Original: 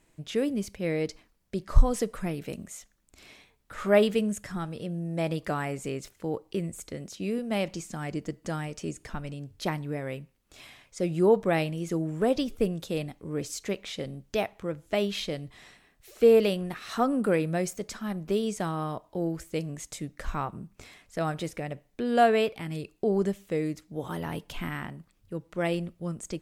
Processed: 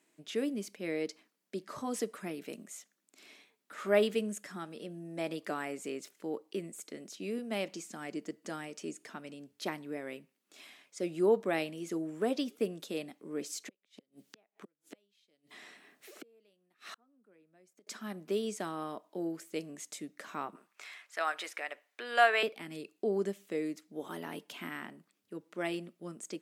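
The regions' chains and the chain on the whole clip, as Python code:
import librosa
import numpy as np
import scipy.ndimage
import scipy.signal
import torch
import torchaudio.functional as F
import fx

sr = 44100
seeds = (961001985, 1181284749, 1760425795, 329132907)

y = fx.chain(x, sr, fx.gate_flip(shuts_db=-27.0, range_db=-40),
    fx.band_squash(depth_pct=70), at=(13.67, 17.87))
y = fx.chain(y, sr, fx.highpass(hz=710.0, slope=12),
    fx.peak_eq(hz=1600.0, db=9.5, octaves=2.5), at=(20.55, 22.43))
y = scipy.signal.sosfilt(scipy.signal.butter(4, 230.0, 'highpass', fs=sr, output='sos'), y)
y = fx.peak_eq(y, sr, hz=860.0, db=-3.5, octaves=0.97)
y = fx.notch(y, sr, hz=510.0, q=12.0)
y = y * 10.0 ** (-4.0 / 20.0)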